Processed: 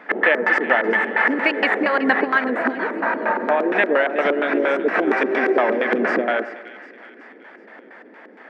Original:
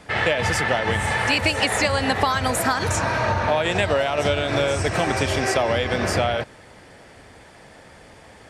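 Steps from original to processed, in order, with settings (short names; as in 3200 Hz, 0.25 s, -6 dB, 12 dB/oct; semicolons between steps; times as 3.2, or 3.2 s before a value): 2.5–3.73 high shelf 2700 Hz -11 dB; LFO low-pass square 4.3 Hz 380–1800 Hz; brick-wall FIR high-pass 200 Hz; on a send: split-band echo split 1600 Hz, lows 0.121 s, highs 0.374 s, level -14 dB; on the sum: gain +1.5 dB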